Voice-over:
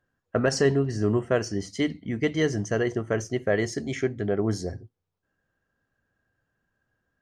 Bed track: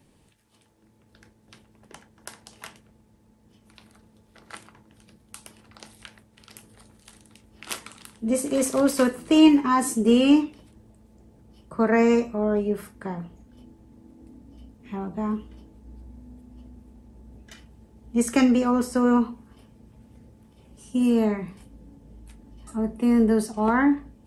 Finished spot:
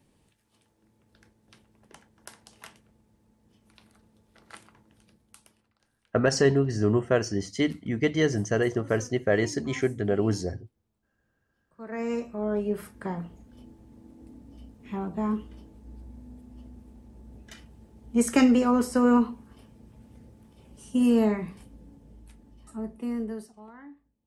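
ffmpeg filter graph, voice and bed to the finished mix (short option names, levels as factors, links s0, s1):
-filter_complex "[0:a]adelay=5800,volume=1.06[s0];[1:a]volume=11.2,afade=t=out:st=4.92:d=0.87:silence=0.0841395,afade=t=in:st=11.76:d=1.26:silence=0.0473151,afade=t=out:st=21.46:d=2.22:silence=0.0446684[s1];[s0][s1]amix=inputs=2:normalize=0"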